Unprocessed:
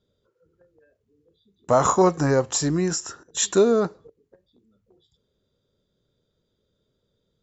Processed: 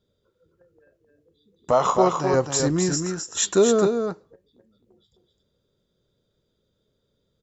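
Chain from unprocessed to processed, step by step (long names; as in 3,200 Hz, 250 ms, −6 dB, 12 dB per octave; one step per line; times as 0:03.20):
0:01.71–0:02.34: loudspeaker in its box 200–5,500 Hz, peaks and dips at 290 Hz −10 dB, 1,600 Hz −7 dB, 3,000 Hz +7 dB
single-tap delay 261 ms −5.5 dB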